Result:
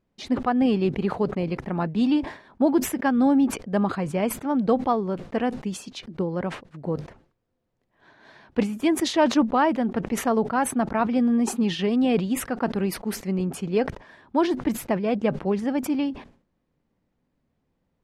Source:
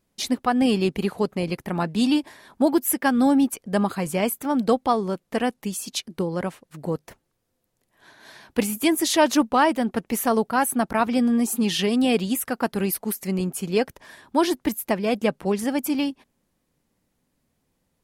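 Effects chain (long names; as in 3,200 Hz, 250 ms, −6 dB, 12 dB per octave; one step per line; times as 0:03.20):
head-to-tape spacing loss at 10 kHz 24 dB
level that may fall only so fast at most 130 dB per second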